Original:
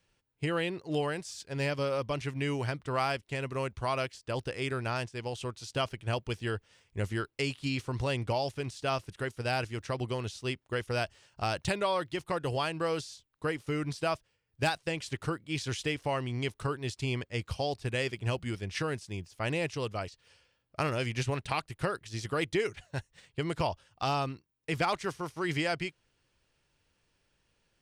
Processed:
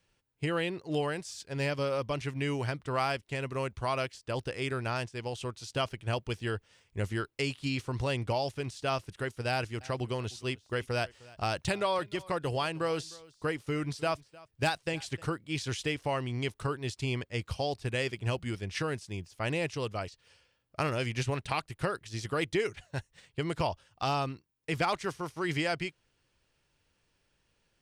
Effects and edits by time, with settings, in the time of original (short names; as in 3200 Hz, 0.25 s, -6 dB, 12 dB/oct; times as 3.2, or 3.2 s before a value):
9.5–15.22 echo 0.307 s -22 dB